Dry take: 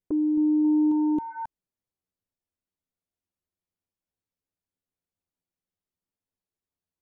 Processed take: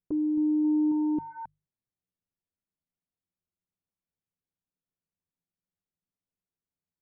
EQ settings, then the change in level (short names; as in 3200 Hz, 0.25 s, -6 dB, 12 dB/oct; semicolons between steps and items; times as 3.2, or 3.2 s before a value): air absorption 480 m; bell 150 Hz +8 dB 0.81 oct; notches 50/100/150 Hz; -3.5 dB